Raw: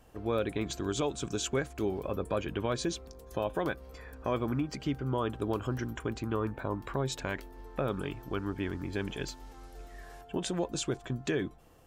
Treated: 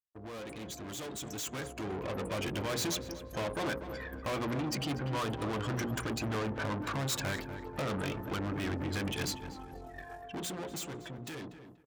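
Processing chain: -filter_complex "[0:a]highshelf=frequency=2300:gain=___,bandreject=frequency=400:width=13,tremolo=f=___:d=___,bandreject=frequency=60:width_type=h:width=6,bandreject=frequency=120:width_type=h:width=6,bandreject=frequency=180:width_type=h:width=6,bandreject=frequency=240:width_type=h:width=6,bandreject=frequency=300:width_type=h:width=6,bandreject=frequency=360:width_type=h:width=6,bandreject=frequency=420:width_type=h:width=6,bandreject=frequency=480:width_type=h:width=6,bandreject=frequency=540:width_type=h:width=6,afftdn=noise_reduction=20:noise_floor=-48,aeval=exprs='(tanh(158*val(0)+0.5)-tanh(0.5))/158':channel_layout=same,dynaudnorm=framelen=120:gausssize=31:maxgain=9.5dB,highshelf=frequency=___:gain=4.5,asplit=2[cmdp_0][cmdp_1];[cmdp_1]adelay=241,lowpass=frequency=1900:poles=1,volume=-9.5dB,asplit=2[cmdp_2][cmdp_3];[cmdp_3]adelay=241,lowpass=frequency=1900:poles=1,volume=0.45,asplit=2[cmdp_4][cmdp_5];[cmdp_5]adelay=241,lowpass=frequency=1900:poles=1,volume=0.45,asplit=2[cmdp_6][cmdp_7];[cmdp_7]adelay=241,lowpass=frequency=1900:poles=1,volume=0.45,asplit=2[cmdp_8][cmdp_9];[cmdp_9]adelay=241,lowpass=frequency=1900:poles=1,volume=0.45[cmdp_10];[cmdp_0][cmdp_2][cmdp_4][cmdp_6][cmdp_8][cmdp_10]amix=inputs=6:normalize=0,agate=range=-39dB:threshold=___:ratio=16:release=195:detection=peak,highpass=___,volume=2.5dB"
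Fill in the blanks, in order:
6, 7.7, 0.37, 11000, -57dB, 78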